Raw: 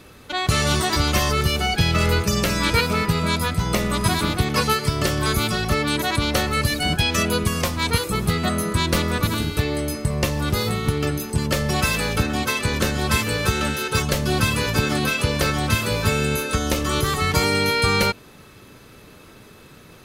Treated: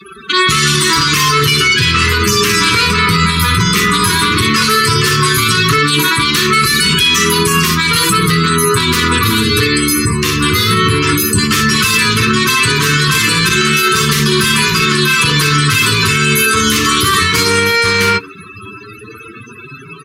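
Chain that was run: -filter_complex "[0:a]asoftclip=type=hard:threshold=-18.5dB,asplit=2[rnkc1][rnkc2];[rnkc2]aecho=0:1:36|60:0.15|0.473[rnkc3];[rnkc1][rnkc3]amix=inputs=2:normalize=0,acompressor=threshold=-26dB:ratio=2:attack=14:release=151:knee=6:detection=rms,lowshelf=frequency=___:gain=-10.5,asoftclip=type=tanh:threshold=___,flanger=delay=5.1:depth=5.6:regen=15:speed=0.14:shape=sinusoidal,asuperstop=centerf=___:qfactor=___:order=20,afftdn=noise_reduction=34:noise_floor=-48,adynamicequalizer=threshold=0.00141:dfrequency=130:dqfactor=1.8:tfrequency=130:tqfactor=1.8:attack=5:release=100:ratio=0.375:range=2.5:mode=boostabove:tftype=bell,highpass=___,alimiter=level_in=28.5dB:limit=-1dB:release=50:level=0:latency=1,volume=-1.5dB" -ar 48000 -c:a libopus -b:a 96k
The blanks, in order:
490, -24.5dB, 670, 1.4, 70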